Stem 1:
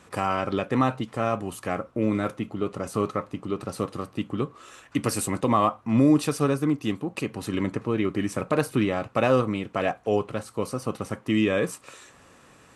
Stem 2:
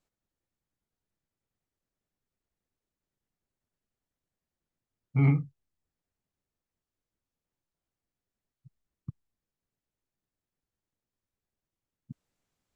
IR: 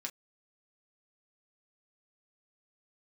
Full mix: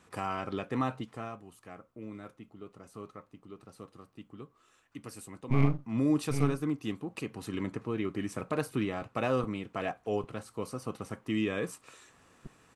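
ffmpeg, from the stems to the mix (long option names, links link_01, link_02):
-filter_complex "[0:a]bandreject=frequency=560:width=12,volume=2.5dB,afade=type=out:start_time=1.01:duration=0.39:silence=0.298538,afade=type=in:start_time=5.69:duration=0.42:silence=0.281838[link_01];[1:a]aeval=exprs='max(val(0),0)':channel_layout=same,adelay=350,volume=1.5dB,asplit=2[link_02][link_03];[link_03]volume=-7dB,aecho=0:1:799:1[link_04];[link_01][link_02][link_04]amix=inputs=3:normalize=0"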